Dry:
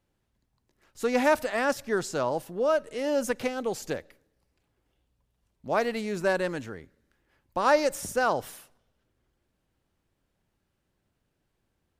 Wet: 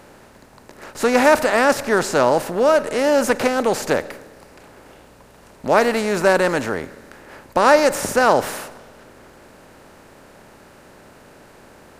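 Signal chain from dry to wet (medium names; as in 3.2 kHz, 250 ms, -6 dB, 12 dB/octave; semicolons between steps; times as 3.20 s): spectral levelling over time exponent 0.6; trim +7 dB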